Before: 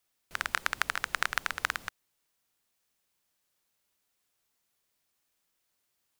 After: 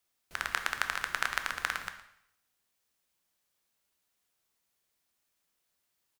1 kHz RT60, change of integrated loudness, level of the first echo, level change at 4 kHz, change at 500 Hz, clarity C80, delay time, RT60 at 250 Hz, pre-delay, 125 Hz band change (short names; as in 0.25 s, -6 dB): 0.75 s, -1.5 dB, -16.5 dB, -1.0 dB, -1.0 dB, 11.5 dB, 0.115 s, 0.75 s, 5 ms, -1.5 dB